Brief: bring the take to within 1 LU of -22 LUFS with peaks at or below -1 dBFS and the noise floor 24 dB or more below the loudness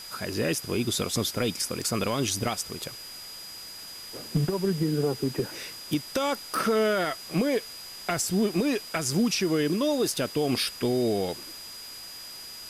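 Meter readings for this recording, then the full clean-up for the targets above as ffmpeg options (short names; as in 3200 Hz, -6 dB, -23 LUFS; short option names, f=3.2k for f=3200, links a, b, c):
steady tone 4900 Hz; tone level -41 dBFS; noise floor -42 dBFS; noise floor target -52 dBFS; loudness -27.5 LUFS; peak -13.0 dBFS; loudness target -22.0 LUFS
-> -af "bandreject=f=4.9k:w=30"
-af "afftdn=nr=10:nf=-42"
-af "volume=5.5dB"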